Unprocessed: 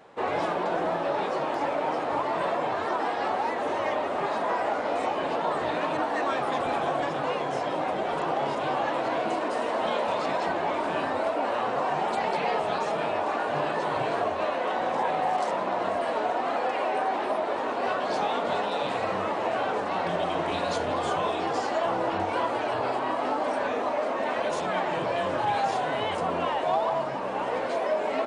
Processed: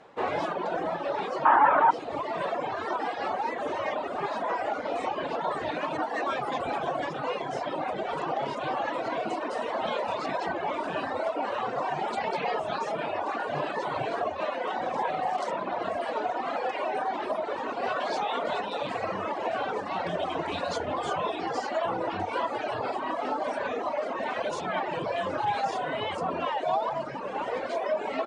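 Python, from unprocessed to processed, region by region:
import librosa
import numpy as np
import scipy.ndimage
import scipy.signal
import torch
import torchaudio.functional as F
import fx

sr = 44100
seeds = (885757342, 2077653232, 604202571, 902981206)

y = fx.chain(x, sr, fx.lowpass(hz=3300.0, slope=24),
    fx.band_shelf(hz=1200.0, db=13.0, octaves=1.3),
    fx.env_flatten(amount_pct=50), at=(1.45, 1.91))
y = fx.chain(y, sr, fx.low_shelf(hz=190.0, db=-10.5),
    fx.env_flatten(amount_pct=70), at=(17.96, 18.6))
y = fx.dereverb_blind(y, sr, rt60_s=1.5)
y = scipy.signal.sosfilt(scipy.signal.butter(2, 7900.0, 'lowpass', fs=sr, output='sos'), y)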